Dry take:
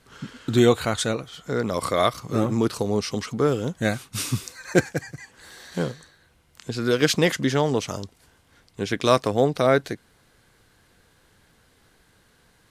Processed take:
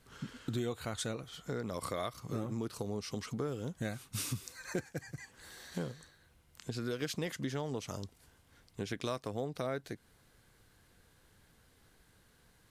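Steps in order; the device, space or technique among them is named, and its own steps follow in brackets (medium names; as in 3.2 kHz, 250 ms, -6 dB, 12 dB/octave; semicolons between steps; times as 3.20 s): ASMR close-microphone chain (bass shelf 160 Hz +5 dB; compression 4:1, threshold -27 dBFS, peak gain reduction 14 dB; treble shelf 11 kHz +7.5 dB); trim -8 dB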